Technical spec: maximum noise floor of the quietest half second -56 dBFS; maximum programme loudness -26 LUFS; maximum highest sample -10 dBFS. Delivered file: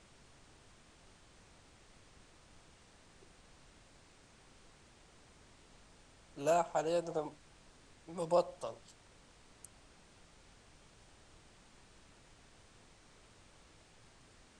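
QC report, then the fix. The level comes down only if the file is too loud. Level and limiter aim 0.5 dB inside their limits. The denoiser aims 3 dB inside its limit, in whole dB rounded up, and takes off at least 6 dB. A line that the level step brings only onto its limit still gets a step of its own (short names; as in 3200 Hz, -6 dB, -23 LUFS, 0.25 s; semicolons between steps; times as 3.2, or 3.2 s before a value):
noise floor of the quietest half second -62 dBFS: OK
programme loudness -36.0 LUFS: OK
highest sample -18.0 dBFS: OK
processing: none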